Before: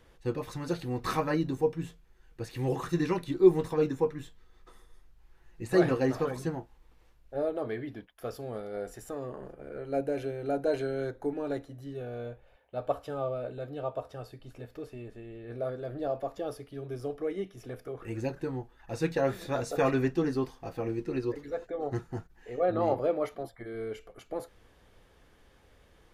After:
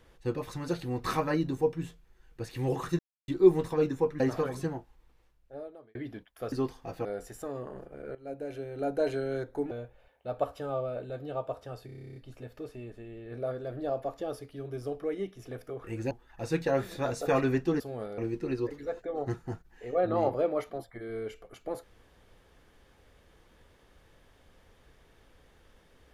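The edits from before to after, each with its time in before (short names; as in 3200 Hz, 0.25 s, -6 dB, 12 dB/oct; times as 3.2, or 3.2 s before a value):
2.99–3.28 mute
4.2–6.02 cut
6.52–7.77 fade out
8.34–8.72 swap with 20.3–20.83
9.82–10.67 fade in, from -15 dB
11.38–12.19 cut
14.34 stutter 0.03 s, 11 plays
18.29–18.61 cut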